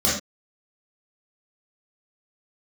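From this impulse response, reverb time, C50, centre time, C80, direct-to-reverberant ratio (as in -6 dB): no single decay rate, 2.0 dB, 46 ms, 8.0 dB, -9.0 dB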